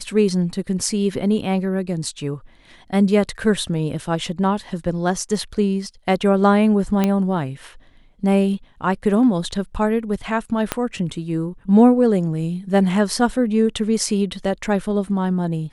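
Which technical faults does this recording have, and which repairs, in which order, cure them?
7.04 s: pop -6 dBFS
10.72 s: pop -4 dBFS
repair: de-click

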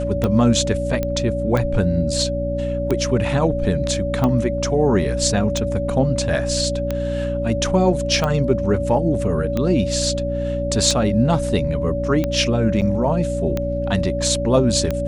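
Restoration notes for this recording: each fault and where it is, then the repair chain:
hum 60 Hz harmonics 5 -25 dBFS
tick 45 rpm -9 dBFS
whine 570 Hz -23 dBFS
1.03 s: pop -10 dBFS
12.81–12.82 s: dropout 7.8 ms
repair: de-click; de-hum 60 Hz, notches 5; band-stop 570 Hz, Q 30; interpolate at 12.81 s, 7.8 ms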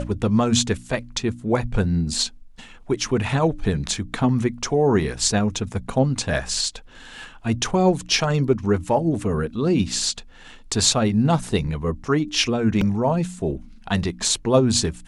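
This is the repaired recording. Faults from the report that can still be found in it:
nothing left

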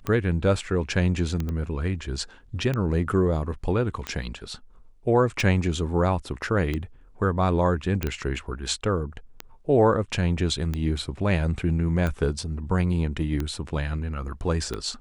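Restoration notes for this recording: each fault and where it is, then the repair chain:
tick 45 rpm -15 dBFS
1.49 s: pop -20 dBFS
8.03 s: pop -12 dBFS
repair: de-click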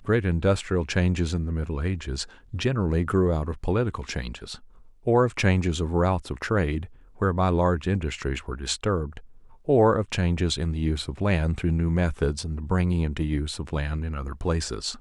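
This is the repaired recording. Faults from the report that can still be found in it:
nothing left

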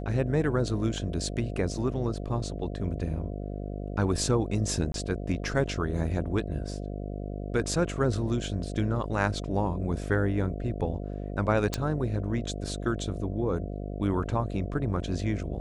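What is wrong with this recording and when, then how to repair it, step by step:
buzz 50 Hz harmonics 14 -35 dBFS
4.92–4.94 s: dropout 22 ms
11.74 s: pop -13 dBFS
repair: de-click; de-hum 50 Hz, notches 14; interpolate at 4.92 s, 22 ms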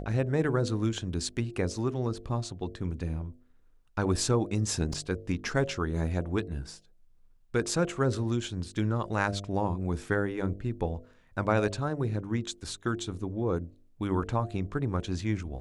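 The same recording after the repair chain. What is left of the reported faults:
nothing left

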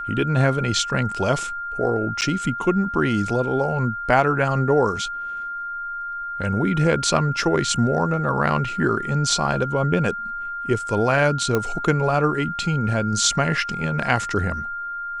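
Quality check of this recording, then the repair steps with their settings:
whine 1.4 kHz -27 dBFS
2.21–2.22 s: dropout 8.7 ms
11.55 s: pop -8 dBFS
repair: de-click; band-stop 1.4 kHz, Q 30; interpolate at 2.21 s, 8.7 ms

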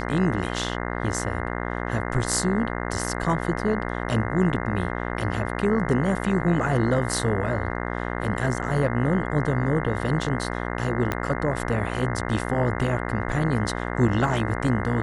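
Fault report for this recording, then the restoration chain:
buzz 60 Hz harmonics 35 -29 dBFS
11.12 s: pop -11 dBFS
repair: de-click; de-hum 60 Hz, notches 35

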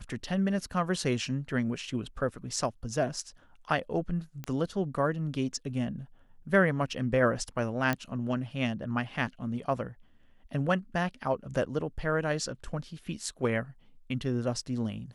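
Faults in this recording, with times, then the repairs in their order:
4.44 s: pop -22 dBFS
7.93 s: pop -15 dBFS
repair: de-click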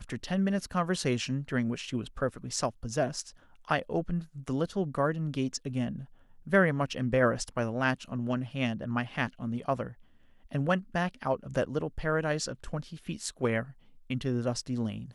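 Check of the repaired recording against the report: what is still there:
nothing left

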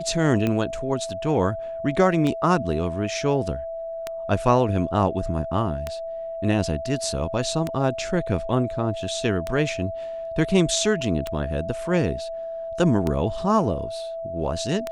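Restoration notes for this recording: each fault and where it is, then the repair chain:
tick 33 1/3 rpm -12 dBFS
whine 660 Hz -29 dBFS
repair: de-click; band-stop 660 Hz, Q 30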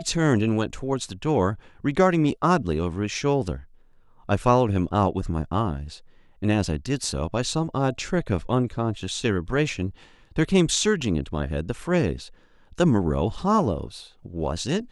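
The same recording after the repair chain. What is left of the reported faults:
nothing left

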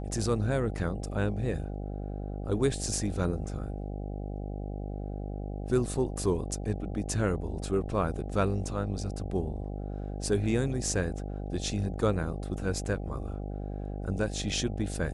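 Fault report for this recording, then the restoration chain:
buzz 50 Hz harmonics 16 -36 dBFS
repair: de-hum 50 Hz, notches 16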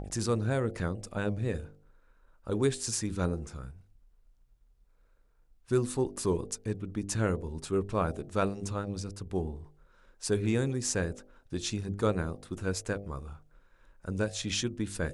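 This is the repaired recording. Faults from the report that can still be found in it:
nothing left

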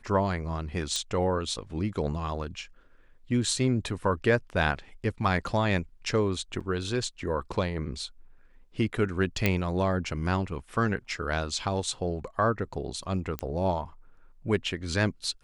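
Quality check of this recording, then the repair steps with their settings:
0.96 s: pop -16 dBFS
6.60–6.61 s: dropout 6.2 ms
9.46 s: pop -9 dBFS
13.39 s: pop -16 dBFS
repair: de-click; interpolate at 6.60 s, 6.2 ms

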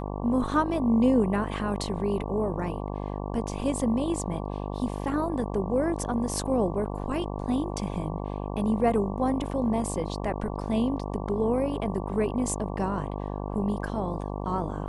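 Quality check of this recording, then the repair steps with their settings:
buzz 50 Hz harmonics 23 -33 dBFS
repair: de-hum 50 Hz, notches 23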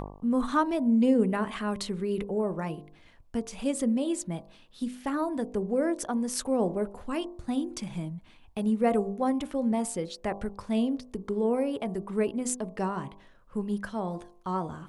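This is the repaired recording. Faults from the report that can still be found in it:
nothing left

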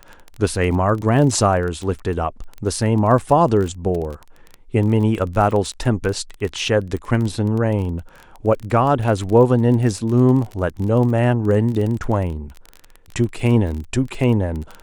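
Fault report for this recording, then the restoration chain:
crackle 21 per s -24 dBFS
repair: de-click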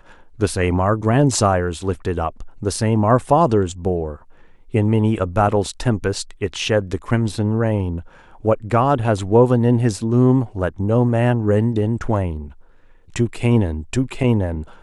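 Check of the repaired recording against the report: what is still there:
nothing left

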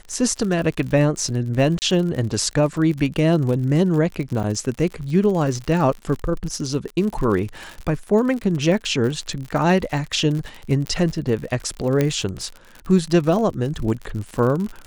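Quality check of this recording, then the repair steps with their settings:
crackle 60 per s -27 dBFS
1.79–1.82 s: dropout 29 ms
4.43–4.44 s: dropout 7.2 ms
10.87 s: pop -13 dBFS
12.01 s: pop -7 dBFS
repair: de-click; interpolate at 1.79 s, 29 ms; interpolate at 4.43 s, 7.2 ms

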